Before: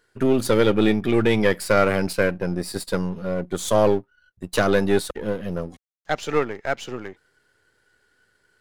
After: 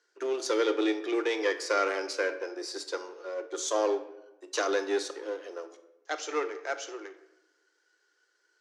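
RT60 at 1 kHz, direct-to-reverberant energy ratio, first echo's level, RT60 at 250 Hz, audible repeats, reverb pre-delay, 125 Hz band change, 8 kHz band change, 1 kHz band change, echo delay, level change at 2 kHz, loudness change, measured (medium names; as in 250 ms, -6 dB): 0.90 s, 8.0 dB, no echo, 1.1 s, no echo, 6 ms, under -40 dB, -3.5 dB, -7.0 dB, no echo, -7.0 dB, -9.0 dB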